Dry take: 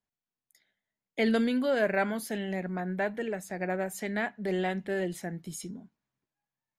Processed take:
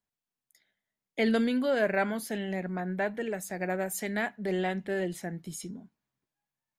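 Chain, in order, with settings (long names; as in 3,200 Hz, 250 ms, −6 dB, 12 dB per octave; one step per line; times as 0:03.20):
0:03.26–0:04.36: high-shelf EQ 6,600 Hz +9 dB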